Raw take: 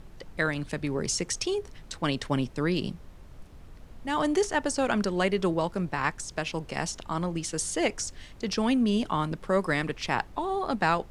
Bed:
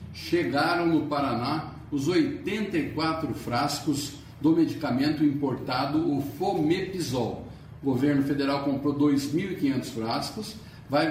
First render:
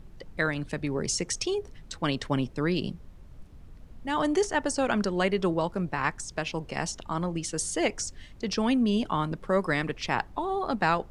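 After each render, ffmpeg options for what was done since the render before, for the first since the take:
-af "afftdn=nr=6:nf=-48"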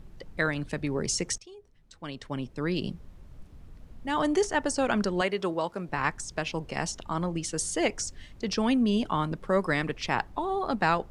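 -filter_complex "[0:a]asettb=1/sr,asplit=3[a][b][c];[a]atrim=end=5.214[d];[b]atrim=start=5.21:end=5.89,asetpts=PTS-STARTPTS,afade=t=in:d=0.004:c=qsin,afade=t=out:st=0.676:d=0.004:c=qsin,highpass=f=380:p=1[e];[c]atrim=start=5.886[f];[d][e]acrossfade=d=0.004:c1=hsin:c2=qsin[g];[g][f]acrossfade=d=0.004:c1=qsin:c2=hsin,asplit=2[h][i];[h]atrim=end=1.38,asetpts=PTS-STARTPTS,afade=t=out:st=1.376:d=0.004:c=hsin:silence=0.1[j];[i]atrim=start=1.38,asetpts=PTS-STARTPTS,afade=t=in:d=1.53:c=qua:silence=0.1[k];[j][k]concat=n=2:v=0:a=1"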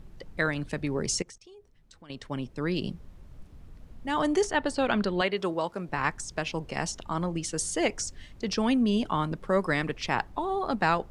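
-filter_complex "[0:a]asettb=1/sr,asplit=3[a][b][c];[a]atrim=end=1.224[d];[b]atrim=start=1.22:end=2.1,asetpts=PTS-STARTPTS,afade=t=in:d=0.004:c=qsin,afade=t=out:st=0.876:d=0.004:c=qsin,acompressor=threshold=-47dB:ratio=5:attack=3.2:release=140:knee=1:detection=peak[e];[c]atrim=start=2.096[f];[d][e]acrossfade=d=0.004:c1=hsin:c2=qsin[g];[g][f]acrossfade=d=0.004:c1=qsin:c2=hsin,asettb=1/sr,asplit=3[h][i][j];[h]atrim=end=4.514[k];[i]atrim=start=4.51:end=5.37,asetpts=PTS-STARTPTS,afade=t=in:d=0.004:c=qsin,afade=t=out:st=0.856:d=0.004:c=qsin,highshelf=f=4.9k:t=q:w=3:g=-6[l];[j]atrim=start=5.366[m];[k][l]acrossfade=d=0.004:c1=hsin:c2=qsin[n];[n][m]acrossfade=d=0.004:c1=qsin:c2=hsin"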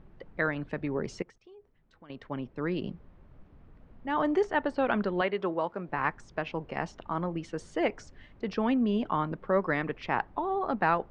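-af "lowpass=2k,lowshelf=f=150:g=-8"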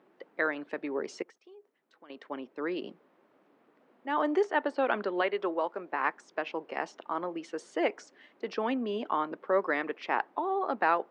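-af "highpass=f=290:w=0.5412,highpass=f=290:w=1.3066"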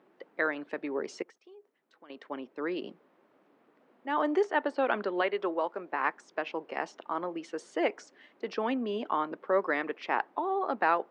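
-af anull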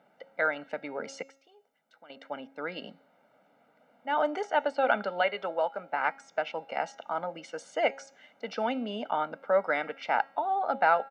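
-af "aecho=1:1:1.4:0.86,bandreject=f=272.3:t=h:w=4,bandreject=f=544.6:t=h:w=4,bandreject=f=816.9:t=h:w=4,bandreject=f=1.0892k:t=h:w=4,bandreject=f=1.3615k:t=h:w=4,bandreject=f=1.6338k:t=h:w=4,bandreject=f=1.9061k:t=h:w=4,bandreject=f=2.1784k:t=h:w=4,bandreject=f=2.4507k:t=h:w=4,bandreject=f=2.723k:t=h:w=4,bandreject=f=2.9953k:t=h:w=4,bandreject=f=3.2676k:t=h:w=4,bandreject=f=3.5399k:t=h:w=4,bandreject=f=3.8122k:t=h:w=4,bandreject=f=4.0845k:t=h:w=4,bandreject=f=4.3568k:t=h:w=4,bandreject=f=4.6291k:t=h:w=4,bandreject=f=4.9014k:t=h:w=4,bandreject=f=5.1737k:t=h:w=4,bandreject=f=5.446k:t=h:w=4,bandreject=f=5.7183k:t=h:w=4,bandreject=f=5.9906k:t=h:w=4,bandreject=f=6.2629k:t=h:w=4,bandreject=f=6.5352k:t=h:w=4,bandreject=f=6.8075k:t=h:w=4,bandreject=f=7.0798k:t=h:w=4,bandreject=f=7.3521k:t=h:w=4,bandreject=f=7.6244k:t=h:w=4"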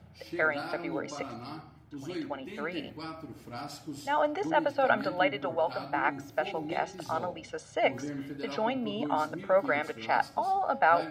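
-filter_complex "[1:a]volume=-14dB[a];[0:a][a]amix=inputs=2:normalize=0"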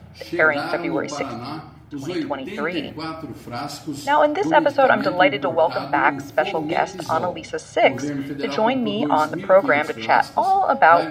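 -af "volume=11dB,alimiter=limit=-2dB:level=0:latency=1"

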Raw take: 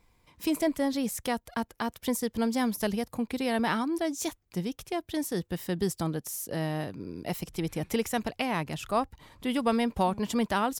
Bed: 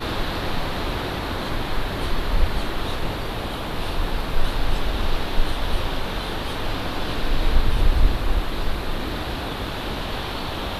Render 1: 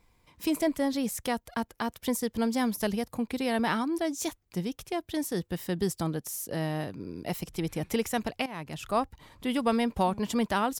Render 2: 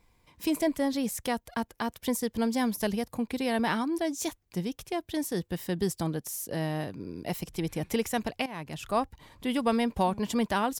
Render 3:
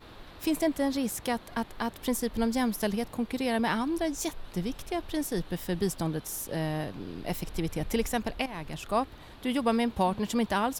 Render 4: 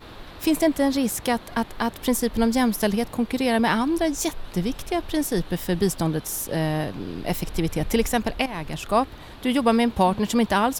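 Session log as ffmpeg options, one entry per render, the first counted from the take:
-filter_complex "[0:a]asplit=2[a][b];[a]atrim=end=8.46,asetpts=PTS-STARTPTS,afade=t=out:st=8.456:d=0.004:c=hsin:silence=0.177828[c];[b]atrim=start=8.46,asetpts=PTS-STARTPTS,afade=t=in:d=0.45:silence=0.177828[d];[c][d]concat=n=2:v=0:a=1"
-af "bandreject=f=1.3k:w=15"
-filter_complex "[1:a]volume=-23dB[a];[0:a][a]amix=inputs=2:normalize=0"
-af "volume=7dB"

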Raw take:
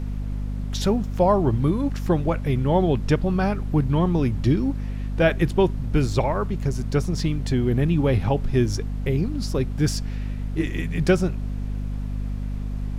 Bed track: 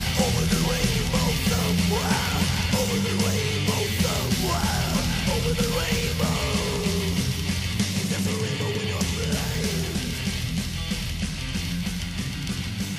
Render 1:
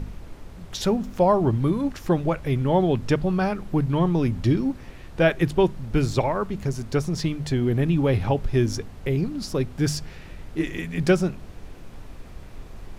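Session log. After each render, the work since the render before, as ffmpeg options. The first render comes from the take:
-af "bandreject=f=50:t=h:w=4,bandreject=f=100:t=h:w=4,bandreject=f=150:t=h:w=4,bandreject=f=200:t=h:w=4,bandreject=f=250:t=h:w=4"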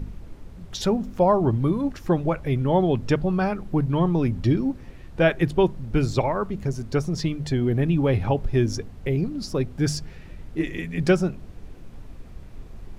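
-af "afftdn=nr=6:nf=-42"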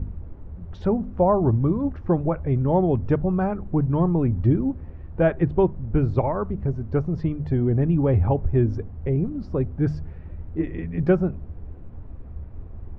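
-af "lowpass=1.2k,equalizer=f=77:t=o:w=0.59:g=13"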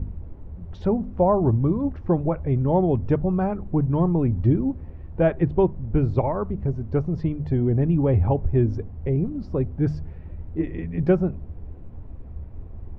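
-af "equalizer=f=1.5k:t=o:w=0.57:g=-3.5,bandreject=f=1.2k:w=30"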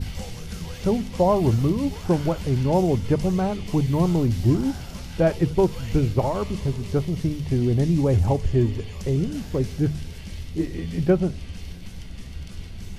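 -filter_complex "[1:a]volume=-14.5dB[a];[0:a][a]amix=inputs=2:normalize=0"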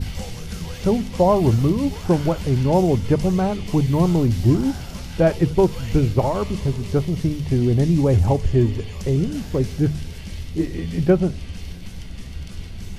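-af "volume=3dB"

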